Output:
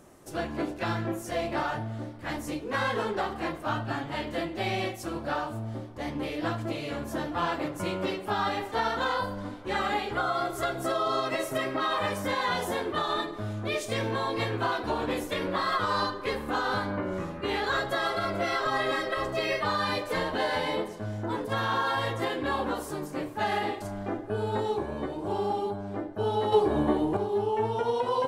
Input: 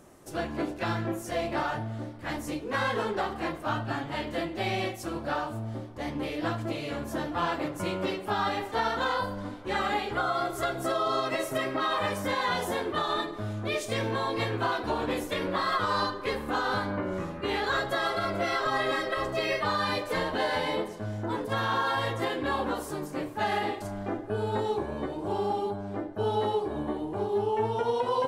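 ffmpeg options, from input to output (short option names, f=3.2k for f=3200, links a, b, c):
-filter_complex "[0:a]asettb=1/sr,asplit=3[a][b][c];[a]atrim=end=26.524[d];[b]atrim=start=26.52:end=27.17,asetpts=PTS-STARTPTS,afade=t=in:d=0.004:c=qsin,afade=t=out:st=0.646:d=0.004:c=qsin,acontrast=80[e];[c]atrim=start=27.166[f];[d][e]acrossfade=d=0.004:c1=hsin:c2=qsin[g];[g][f]acrossfade=d=0.004:c1=qsin:c2=hsin"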